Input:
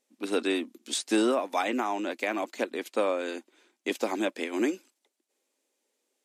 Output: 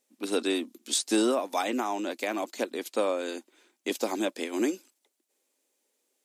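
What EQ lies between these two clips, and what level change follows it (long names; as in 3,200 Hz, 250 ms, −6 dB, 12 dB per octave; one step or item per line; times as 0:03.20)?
dynamic equaliser 2,200 Hz, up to −5 dB, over −46 dBFS, Q 0.89
high-shelf EQ 10,000 Hz +9.5 dB
dynamic equaliser 4,400 Hz, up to +4 dB, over −51 dBFS, Q 0.79
0.0 dB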